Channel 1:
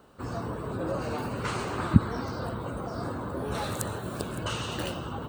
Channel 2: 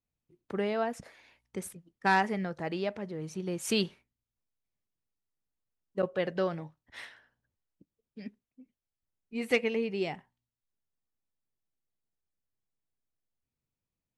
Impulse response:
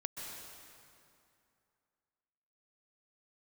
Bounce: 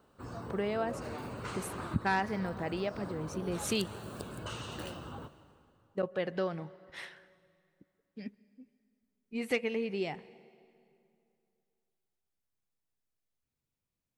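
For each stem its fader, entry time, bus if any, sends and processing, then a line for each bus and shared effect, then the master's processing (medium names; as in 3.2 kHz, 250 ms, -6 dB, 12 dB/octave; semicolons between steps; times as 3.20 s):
-10.5 dB, 0.00 s, send -10.5 dB, none
-0.5 dB, 0.00 s, send -18.5 dB, none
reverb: on, RT60 2.6 s, pre-delay 118 ms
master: compression 1.5:1, threshold -34 dBFS, peak gain reduction 5.5 dB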